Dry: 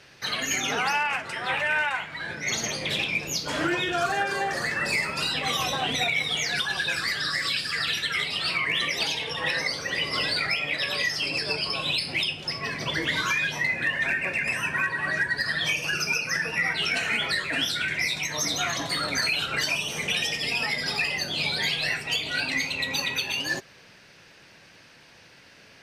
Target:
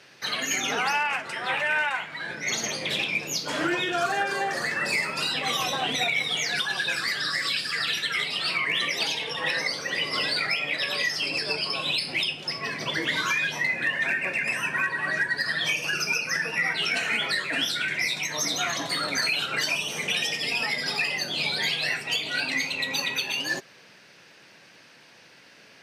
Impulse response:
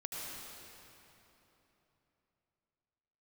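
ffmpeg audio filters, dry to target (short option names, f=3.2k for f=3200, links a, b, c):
-af "highpass=160"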